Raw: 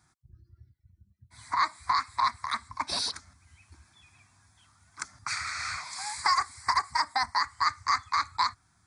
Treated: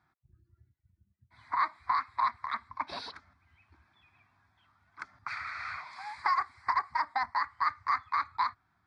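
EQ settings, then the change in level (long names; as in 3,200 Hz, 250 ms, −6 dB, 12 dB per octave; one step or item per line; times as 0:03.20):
high-frequency loss of the air 380 metres
low-shelf EQ 230 Hz −10.5 dB
0.0 dB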